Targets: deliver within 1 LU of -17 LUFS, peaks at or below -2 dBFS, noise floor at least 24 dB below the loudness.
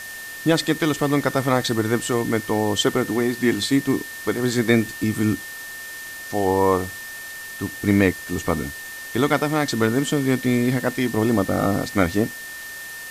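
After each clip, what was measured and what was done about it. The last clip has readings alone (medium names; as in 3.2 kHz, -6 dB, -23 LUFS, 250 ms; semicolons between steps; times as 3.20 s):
steady tone 1.8 kHz; tone level -34 dBFS; noise floor -35 dBFS; noise floor target -46 dBFS; loudness -21.5 LUFS; peak level -4.0 dBFS; loudness target -17.0 LUFS
-> band-stop 1.8 kHz, Q 30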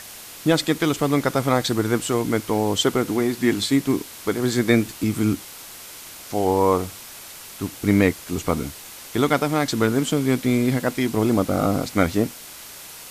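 steady tone not found; noise floor -40 dBFS; noise floor target -46 dBFS
-> noise reduction 6 dB, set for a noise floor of -40 dBFS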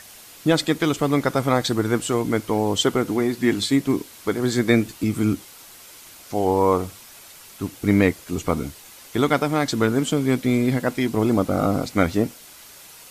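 noise floor -45 dBFS; noise floor target -46 dBFS
-> noise reduction 6 dB, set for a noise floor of -45 dBFS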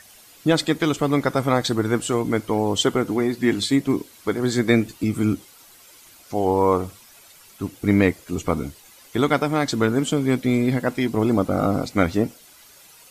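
noise floor -49 dBFS; loudness -22.0 LUFS; peak level -4.0 dBFS; loudness target -17.0 LUFS
-> trim +5 dB; peak limiter -2 dBFS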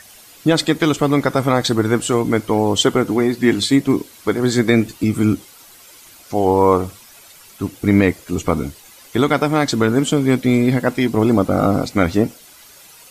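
loudness -17.5 LUFS; peak level -2.0 dBFS; noise floor -44 dBFS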